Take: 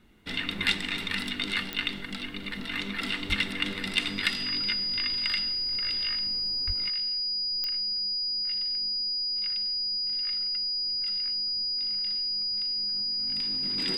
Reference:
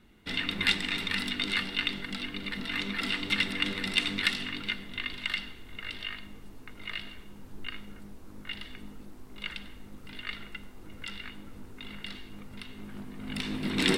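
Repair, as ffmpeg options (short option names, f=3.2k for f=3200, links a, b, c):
-filter_complex "[0:a]adeclick=t=4,bandreject=f=4.9k:w=30,asplit=3[a][b][c];[a]afade=t=out:st=3.28:d=0.02[d];[b]highpass=f=140:w=0.5412,highpass=f=140:w=1.3066,afade=t=in:st=3.28:d=0.02,afade=t=out:st=3.4:d=0.02[e];[c]afade=t=in:st=3.4:d=0.02[f];[d][e][f]amix=inputs=3:normalize=0,asplit=3[g][h][i];[g]afade=t=out:st=6.66:d=0.02[j];[h]highpass=f=140:w=0.5412,highpass=f=140:w=1.3066,afade=t=in:st=6.66:d=0.02,afade=t=out:st=6.78:d=0.02[k];[i]afade=t=in:st=6.78:d=0.02[l];[j][k][l]amix=inputs=3:normalize=0,asetnsamples=n=441:p=0,asendcmd='6.89 volume volume 10dB',volume=0dB"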